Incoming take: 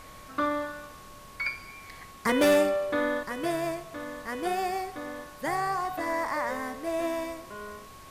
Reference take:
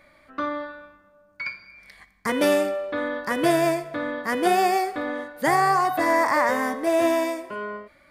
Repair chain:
clipped peaks rebuilt −16 dBFS
notch filter 1,100 Hz, Q 30
noise reduction from a noise print 9 dB
level 0 dB, from 0:03.23 +9.5 dB

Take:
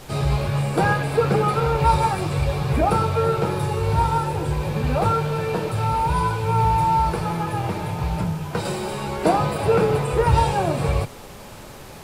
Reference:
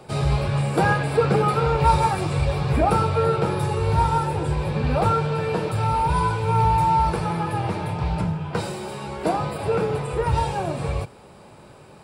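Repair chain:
noise reduction from a noise print 6 dB
level 0 dB, from 0:08.65 −4.5 dB

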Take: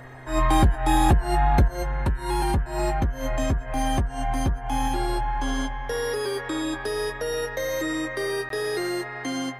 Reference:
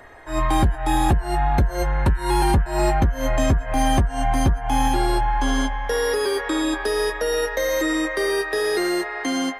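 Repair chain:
click removal
hum removal 128.3 Hz, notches 9
repair the gap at 0:08.49, 13 ms
level correction +5.5 dB, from 0:01.68

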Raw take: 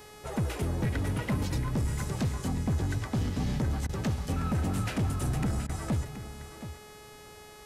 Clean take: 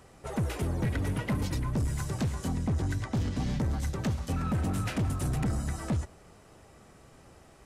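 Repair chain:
hum removal 422 Hz, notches 32
repair the gap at 0:03.87/0:05.67, 21 ms
echo removal 724 ms −12 dB

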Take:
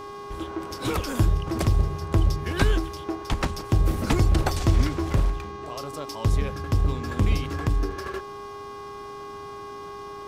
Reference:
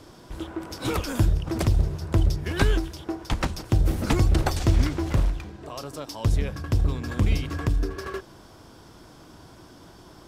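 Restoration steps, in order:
hum removal 406.3 Hz, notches 16
notch filter 1,100 Hz, Q 30

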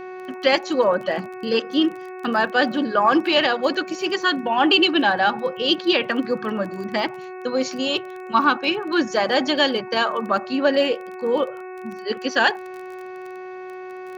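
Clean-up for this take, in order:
click removal
hum removal 369.9 Hz, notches 7

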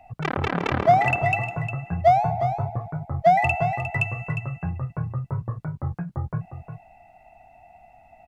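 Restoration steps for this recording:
echo removal 356 ms −9.5 dB

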